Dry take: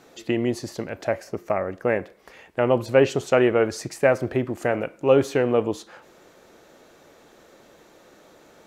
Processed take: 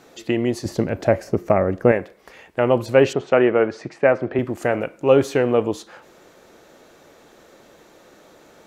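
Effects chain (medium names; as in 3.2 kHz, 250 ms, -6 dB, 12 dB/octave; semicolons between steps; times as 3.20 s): 0.65–1.92 s: bass shelf 500 Hz +10.5 dB; 3.13–4.39 s: band-pass 140–2700 Hz; trim +2.5 dB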